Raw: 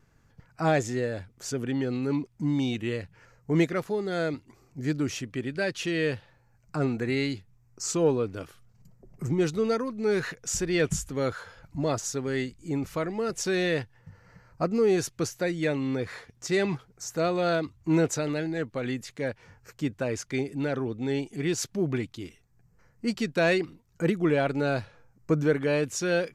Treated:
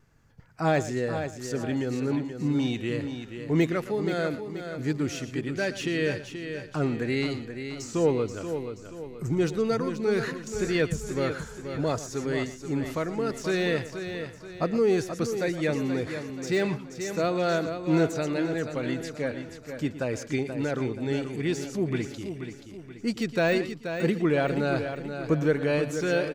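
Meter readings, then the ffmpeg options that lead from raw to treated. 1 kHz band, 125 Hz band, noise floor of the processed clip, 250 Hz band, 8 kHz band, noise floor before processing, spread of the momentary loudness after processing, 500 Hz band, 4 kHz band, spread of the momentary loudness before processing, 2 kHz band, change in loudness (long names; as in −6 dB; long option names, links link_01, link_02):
+0.5 dB, +0.5 dB, −45 dBFS, +1.0 dB, −5.5 dB, −63 dBFS, 10 LU, +0.5 dB, −0.5 dB, 10 LU, +0.5 dB, 0.0 dB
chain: -filter_complex "[0:a]asplit=2[link_01][link_02];[link_02]aecho=0:1:117:0.188[link_03];[link_01][link_03]amix=inputs=2:normalize=0,deesser=0.8,asplit=2[link_04][link_05];[link_05]aecho=0:1:480|960|1440|1920|2400:0.376|0.158|0.0663|0.0278|0.0117[link_06];[link_04][link_06]amix=inputs=2:normalize=0"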